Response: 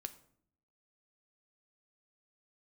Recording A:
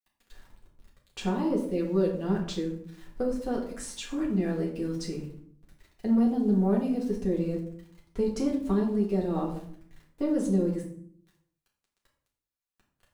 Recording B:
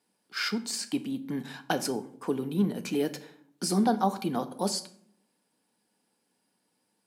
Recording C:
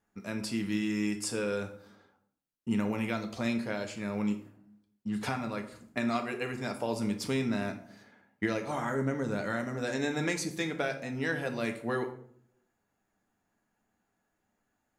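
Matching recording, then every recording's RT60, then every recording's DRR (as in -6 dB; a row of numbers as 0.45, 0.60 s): B; 0.60, 0.60, 0.60 s; -3.5, 9.0, 4.0 dB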